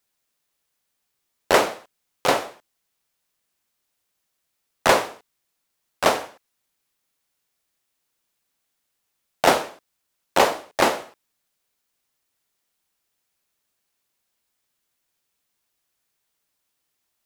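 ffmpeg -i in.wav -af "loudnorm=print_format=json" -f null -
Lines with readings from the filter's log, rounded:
"input_i" : "-21.8",
"input_tp" : "-1.9",
"input_lra" : "6.1",
"input_thresh" : "-33.2",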